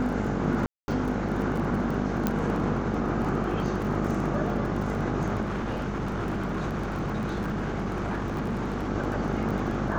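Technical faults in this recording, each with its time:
buzz 50 Hz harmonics 17 -32 dBFS
crackle 24 per s -33 dBFS
0.66–0.88 s: dropout 220 ms
2.27 s: pop -11 dBFS
5.41–8.90 s: clipped -25.5 dBFS

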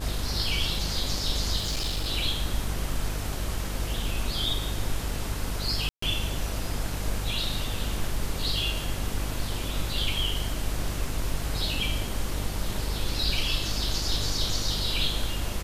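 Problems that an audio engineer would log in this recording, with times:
buzz 50 Hz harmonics 29 -33 dBFS
1.56–2.09 s: clipped -24.5 dBFS
5.89–6.02 s: dropout 134 ms

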